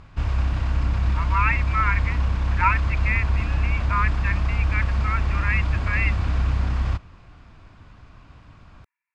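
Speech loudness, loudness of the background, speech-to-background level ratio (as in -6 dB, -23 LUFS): -26.5 LUFS, -24.5 LUFS, -2.0 dB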